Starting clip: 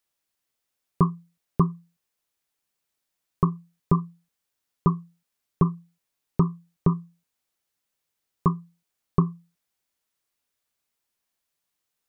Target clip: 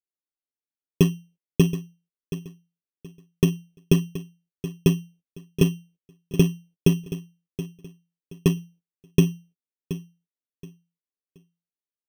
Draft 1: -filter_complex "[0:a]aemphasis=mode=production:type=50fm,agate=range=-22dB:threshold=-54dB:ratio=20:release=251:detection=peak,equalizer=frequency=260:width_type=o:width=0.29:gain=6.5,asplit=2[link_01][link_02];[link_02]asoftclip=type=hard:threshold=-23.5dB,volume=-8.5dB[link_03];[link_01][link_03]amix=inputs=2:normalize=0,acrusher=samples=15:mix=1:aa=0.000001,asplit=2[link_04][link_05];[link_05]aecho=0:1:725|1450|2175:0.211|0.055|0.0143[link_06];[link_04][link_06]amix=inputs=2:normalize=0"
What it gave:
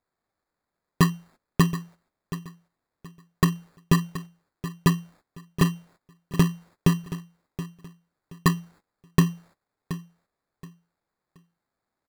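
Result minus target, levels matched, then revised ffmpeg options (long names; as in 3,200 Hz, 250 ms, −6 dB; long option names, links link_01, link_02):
500 Hz band −5.5 dB
-filter_complex "[0:a]aemphasis=mode=production:type=50fm,agate=range=-22dB:threshold=-54dB:ratio=20:release=251:detection=peak,lowpass=frequency=420:width_type=q:width=2.2,equalizer=frequency=260:width_type=o:width=0.29:gain=6.5,asplit=2[link_01][link_02];[link_02]asoftclip=type=hard:threshold=-23.5dB,volume=-8.5dB[link_03];[link_01][link_03]amix=inputs=2:normalize=0,acrusher=samples=15:mix=1:aa=0.000001,asplit=2[link_04][link_05];[link_05]aecho=0:1:725|1450|2175:0.211|0.055|0.0143[link_06];[link_04][link_06]amix=inputs=2:normalize=0"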